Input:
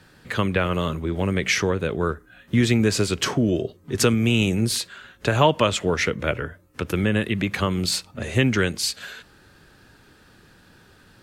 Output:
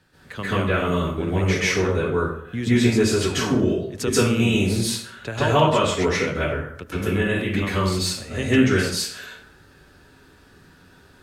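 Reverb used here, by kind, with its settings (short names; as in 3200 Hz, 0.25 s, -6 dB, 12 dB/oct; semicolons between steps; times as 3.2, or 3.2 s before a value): plate-style reverb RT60 0.63 s, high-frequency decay 0.65×, pre-delay 0.12 s, DRR -10 dB; gain -9.5 dB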